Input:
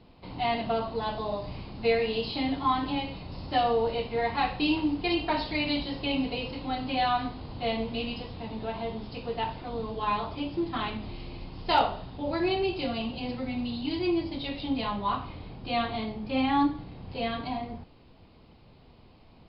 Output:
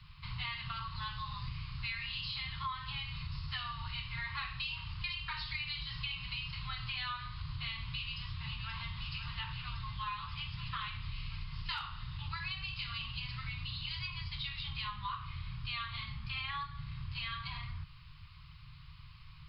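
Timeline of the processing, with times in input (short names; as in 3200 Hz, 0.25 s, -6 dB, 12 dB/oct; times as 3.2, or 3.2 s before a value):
7.91–8.91 echo throw 0.53 s, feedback 85%, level -9.5 dB
whole clip: Chebyshev band-stop 150–1100 Hz, order 4; compressor 6:1, threshold -42 dBFS; gain +5 dB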